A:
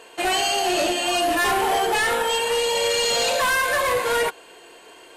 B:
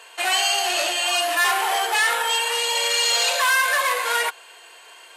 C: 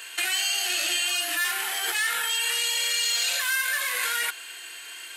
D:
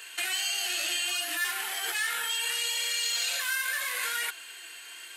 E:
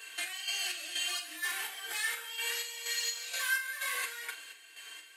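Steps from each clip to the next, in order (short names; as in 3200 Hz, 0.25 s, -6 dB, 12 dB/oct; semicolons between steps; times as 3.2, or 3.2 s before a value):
HPF 910 Hz 12 dB/oct; gain +3 dB
high shelf 12000 Hz +11.5 dB; in parallel at +2.5 dB: negative-ratio compressor -27 dBFS, ratio -0.5; on the sum: band shelf 680 Hz -12.5 dB; gain -7.5 dB
flange 0.7 Hz, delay 2.2 ms, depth 7.2 ms, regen +71%
chopper 2.1 Hz, depth 60%, duty 50%; flutter echo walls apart 7 m, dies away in 0.21 s; reverb, pre-delay 3 ms, DRR -1.5 dB; gain -7 dB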